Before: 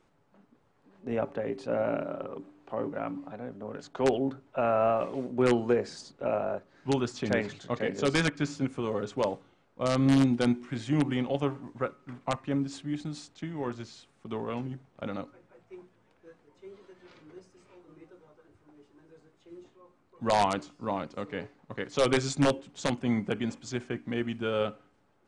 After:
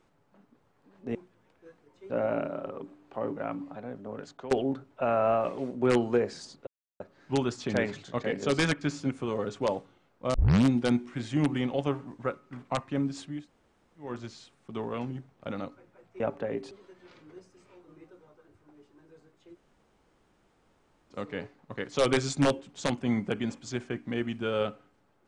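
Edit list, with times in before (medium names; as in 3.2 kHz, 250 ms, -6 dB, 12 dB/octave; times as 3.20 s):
1.15–1.66 s: swap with 15.76–16.71 s
3.69–4.07 s: fade out equal-power, to -19.5 dB
6.23–6.56 s: mute
9.90 s: tape start 0.31 s
12.94–13.63 s: room tone, crossfade 0.24 s
19.54–21.12 s: room tone, crossfade 0.06 s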